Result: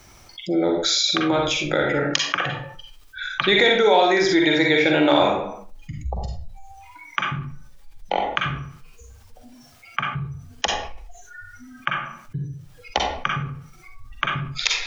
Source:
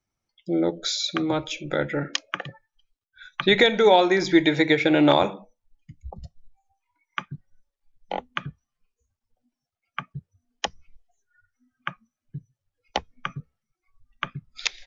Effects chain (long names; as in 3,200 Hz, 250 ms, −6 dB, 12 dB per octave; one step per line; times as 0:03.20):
parametric band 190 Hz −5.5 dB 1.7 octaves
convolution reverb RT60 0.40 s, pre-delay 39 ms, DRR 1.5 dB
envelope flattener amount 50%
level −1.5 dB